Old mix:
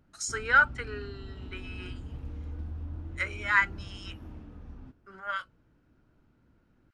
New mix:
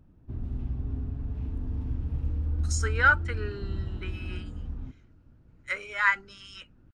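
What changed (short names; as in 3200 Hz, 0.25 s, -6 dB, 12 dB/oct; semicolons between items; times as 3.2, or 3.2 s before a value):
speech: entry +2.50 s; master: add low shelf 230 Hz +11 dB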